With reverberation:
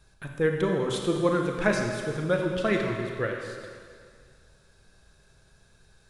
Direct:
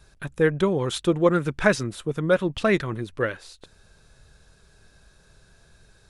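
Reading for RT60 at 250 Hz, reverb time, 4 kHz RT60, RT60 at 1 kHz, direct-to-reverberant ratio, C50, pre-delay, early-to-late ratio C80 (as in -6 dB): 2.0 s, 2.1 s, 1.9 s, 2.1 s, 1.5 dB, 3.0 dB, 26 ms, 4.0 dB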